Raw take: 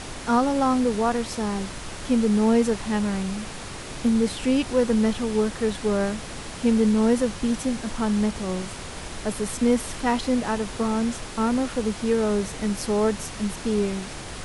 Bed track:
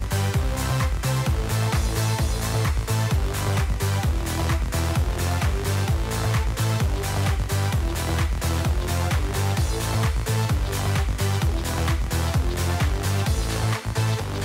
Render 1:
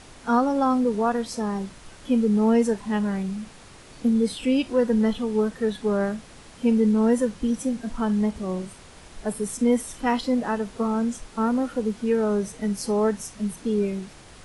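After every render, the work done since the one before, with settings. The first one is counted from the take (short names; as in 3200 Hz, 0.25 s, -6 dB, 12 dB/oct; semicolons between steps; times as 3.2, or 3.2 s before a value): noise print and reduce 11 dB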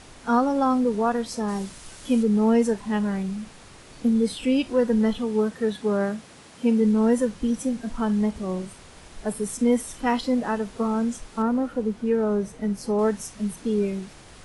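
1.48–2.23 high shelf 4500 Hz +10.5 dB; 5.24–6.8 HPF 63 Hz -> 130 Hz; 11.42–12.99 high shelf 2300 Hz -8 dB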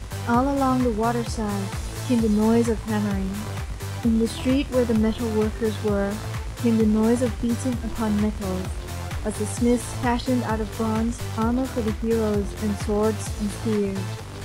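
add bed track -8 dB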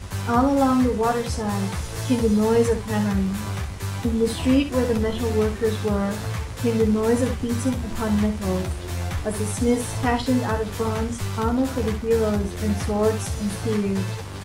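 early reflections 11 ms -4 dB, 67 ms -9.5 dB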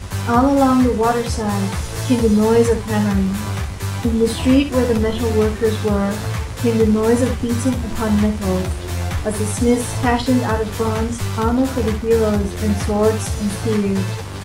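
gain +5 dB; limiter -2 dBFS, peak gain reduction 1.5 dB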